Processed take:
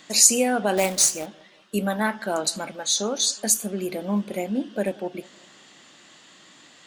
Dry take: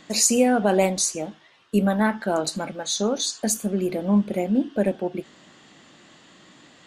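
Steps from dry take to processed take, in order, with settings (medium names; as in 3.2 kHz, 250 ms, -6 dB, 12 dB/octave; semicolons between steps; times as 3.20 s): tilt EQ +2 dB/octave; 0.77–1.26 s: companded quantiser 4-bit; on a send: bucket-brigade echo 184 ms, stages 2048, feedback 47%, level -23 dB; on the sum: trim -1 dB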